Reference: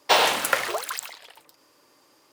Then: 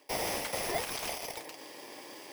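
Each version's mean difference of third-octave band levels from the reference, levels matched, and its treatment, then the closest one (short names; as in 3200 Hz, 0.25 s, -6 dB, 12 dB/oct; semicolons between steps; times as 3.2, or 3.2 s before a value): 12.5 dB: FFT order left unsorted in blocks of 32 samples; reverse; compressor 10:1, threshold -35 dBFS, peak gain reduction 21.5 dB; reverse; overdrive pedal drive 28 dB, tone 1800 Hz, clips at -17 dBFS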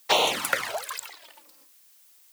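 2.0 dB: envelope flanger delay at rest 3.9 ms, full sweep at -16 dBFS; gate with hold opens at -50 dBFS; added noise blue -57 dBFS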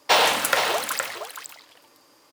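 5.0 dB: notch 380 Hz, Q 12; on a send: echo 0.468 s -9 dB; on the sum: core saturation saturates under 2500 Hz; gain +2.5 dB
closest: second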